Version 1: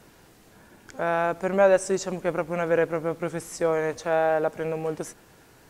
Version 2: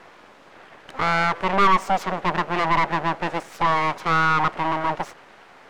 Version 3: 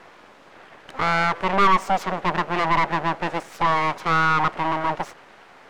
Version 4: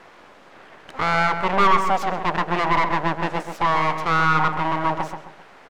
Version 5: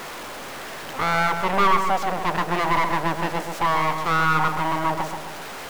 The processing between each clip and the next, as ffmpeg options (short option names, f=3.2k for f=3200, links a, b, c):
-filter_complex "[0:a]aemphasis=mode=reproduction:type=75fm,aeval=exprs='abs(val(0))':c=same,asplit=2[a][b];[b]highpass=f=720:p=1,volume=20dB,asoftclip=type=tanh:threshold=-7.5dB[c];[a][c]amix=inputs=2:normalize=0,lowpass=f=2.4k:p=1,volume=-6dB"
-af anull
-filter_complex "[0:a]asplit=2[a][b];[b]adelay=132,lowpass=f=1.8k:p=1,volume=-6dB,asplit=2[c][d];[d]adelay=132,lowpass=f=1.8k:p=1,volume=0.37,asplit=2[e][f];[f]adelay=132,lowpass=f=1.8k:p=1,volume=0.37,asplit=2[g][h];[h]adelay=132,lowpass=f=1.8k:p=1,volume=0.37[i];[a][c][e][g][i]amix=inputs=5:normalize=0"
-af "aeval=exprs='val(0)+0.5*0.0398*sgn(val(0))':c=same,volume=-2.5dB"